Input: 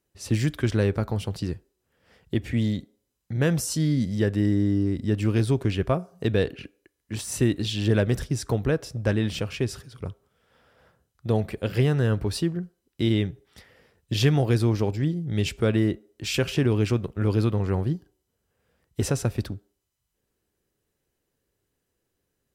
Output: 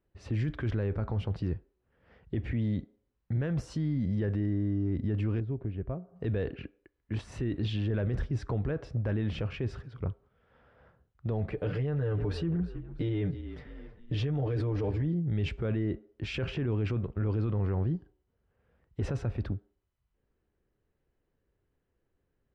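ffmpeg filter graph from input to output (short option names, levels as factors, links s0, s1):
-filter_complex "[0:a]asettb=1/sr,asplit=3[s0][s1][s2];[s0]atrim=end=5.404[s3];[s1]atrim=start=5.4:end=6.16,asetpts=PTS-STARTPTS,afade=t=in:d=0.004:c=qsin,afade=t=out:st=0.756:d=0.004:c=qsin,lowpass=1900,equalizer=f=1300:t=o:w=1.9:g=-7.5,acompressor=threshold=0.00355:ratio=1.5:attack=3.2:release=140:knee=1:detection=peak[s4];[s2]atrim=start=6.156[s5];[s3][s4]acrossfade=d=0.004:c1=hsin:c2=qsin[s6];[s6][s5]acrossfade=d=0.004:c1=qsin:c2=hsin,asettb=1/sr,asplit=3[s7][s8][s9];[s7]atrim=end=11.524[s10];[s8]atrim=start=11.52:end=15.07,asetpts=PTS-STARTPTS,afade=t=in:d=0.004:c=qsin,afade=t=out:st=3.546:d=0.004:c=qsin,equalizer=f=500:w=3.6:g=6.5,aecho=1:1:6.7:0.82,atrim=end_sample=156555,asplit=4[s11][s12][s13][s14];[s12]adelay=322,afreqshift=-34,volume=0.0891[s15];[s13]adelay=644,afreqshift=-68,volume=0.0403[s16];[s14]adelay=966,afreqshift=-102,volume=0.018[s17];[s11][s15][s16][s17]amix=inputs=4:normalize=0,atrim=end_sample=156555[s18];[s9]atrim=start=15.066[s19];[s10][s18]acrossfade=d=0.004:c1=hsin:c2=qsin[s20];[s20][s19]acrossfade=d=0.004:c1=qsin:c2=hsin,lowpass=2100,lowshelf=f=64:g=10.5,alimiter=limit=0.075:level=0:latency=1:release=12,volume=0.841"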